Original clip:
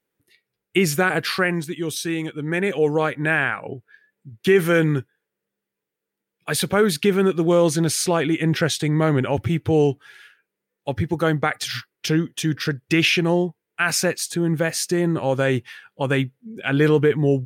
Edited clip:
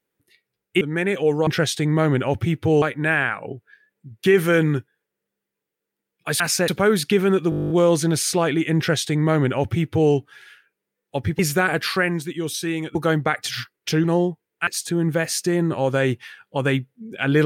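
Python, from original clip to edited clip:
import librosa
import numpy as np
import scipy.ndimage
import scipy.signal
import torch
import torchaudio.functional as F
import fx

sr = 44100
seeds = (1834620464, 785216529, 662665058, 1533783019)

y = fx.edit(x, sr, fx.move(start_s=0.81, length_s=1.56, to_s=11.12),
    fx.stutter(start_s=7.43, slice_s=0.02, count=11),
    fx.duplicate(start_s=8.5, length_s=1.35, to_s=3.03),
    fx.cut(start_s=12.21, length_s=1.0),
    fx.move(start_s=13.84, length_s=0.28, to_s=6.61), tone=tone)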